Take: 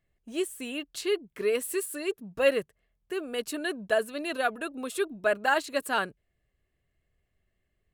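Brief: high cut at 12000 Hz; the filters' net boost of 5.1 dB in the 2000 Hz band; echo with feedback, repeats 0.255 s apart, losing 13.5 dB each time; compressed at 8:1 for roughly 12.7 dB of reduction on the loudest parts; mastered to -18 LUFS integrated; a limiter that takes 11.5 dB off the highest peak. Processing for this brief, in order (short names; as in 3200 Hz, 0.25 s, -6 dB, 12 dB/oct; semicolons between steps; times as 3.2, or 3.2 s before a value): LPF 12000 Hz; bell 2000 Hz +7 dB; compressor 8:1, threshold -30 dBFS; limiter -31.5 dBFS; feedback echo 0.255 s, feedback 21%, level -13.5 dB; gain +23 dB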